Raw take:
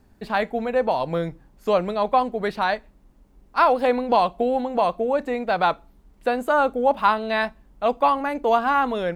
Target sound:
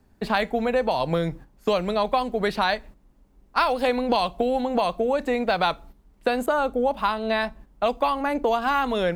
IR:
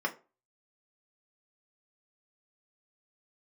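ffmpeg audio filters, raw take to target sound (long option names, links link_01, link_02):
-filter_complex "[0:a]agate=range=-9dB:threshold=-44dB:ratio=16:detection=peak,acrossover=split=120|2600[link_01][link_02][link_03];[link_02]acompressor=threshold=-26dB:ratio=6[link_04];[link_01][link_04][link_03]amix=inputs=3:normalize=0,asettb=1/sr,asplit=3[link_05][link_06][link_07];[link_05]atrim=end=6.464[link_08];[link_06]atrim=start=6.46:end=8.62,asetpts=PTS-STARTPTS,afade=type=in:duration=0.004:curve=qsin,afade=type=out:start_time=2.156:duration=0.004:curve=qsin,adynamicequalizer=threshold=0.00794:dfrequency=1500:dqfactor=0.7:tfrequency=1500:tqfactor=0.7:attack=5:release=100:ratio=0.375:range=2.5:mode=cutabove:tftype=highshelf[link_09];[link_07]atrim=start=8.616[link_10];[link_08][link_09]acrossfade=duration=0.004:curve1=hsin:curve2=qsin[link_11];[link_11][link_10]acrossfade=duration=0.004:curve1=qsin:curve2=hsin,volume=6dB"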